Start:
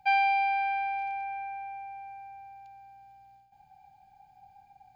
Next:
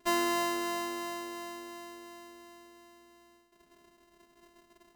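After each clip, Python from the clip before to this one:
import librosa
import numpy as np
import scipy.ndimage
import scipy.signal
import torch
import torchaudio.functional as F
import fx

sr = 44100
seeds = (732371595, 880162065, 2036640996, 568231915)

y = np.r_[np.sort(x[:len(x) // 128 * 128].reshape(-1, 128), axis=1).ravel(), x[len(x) // 128 * 128:]]
y = y + 0.88 * np.pad(y, (int(4.8 * sr / 1000.0), 0))[:len(y)]
y = y * librosa.db_to_amplitude(-5.5)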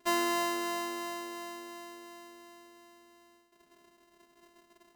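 y = fx.low_shelf(x, sr, hz=120.0, db=-9.0)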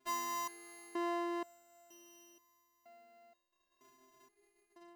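y = fx.rider(x, sr, range_db=4, speed_s=2.0)
y = fx.resonator_held(y, sr, hz=2.1, low_hz=130.0, high_hz=970.0)
y = y * librosa.db_to_amplitude(4.0)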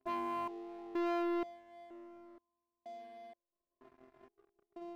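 y = scipy.signal.sosfilt(scipy.signal.butter(6, 870.0, 'lowpass', fs=sr, output='sos'), x)
y = fx.leveller(y, sr, passes=3)
y = y * librosa.db_to_amplitude(1.0)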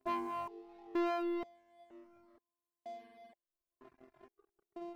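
y = fx.dereverb_blind(x, sr, rt60_s=1.6)
y = y * librosa.db_to_amplitude(2.5)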